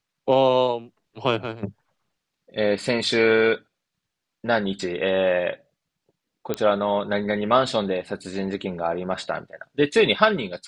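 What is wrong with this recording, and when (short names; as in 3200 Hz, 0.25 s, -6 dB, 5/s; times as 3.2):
6.54 pop -10 dBFS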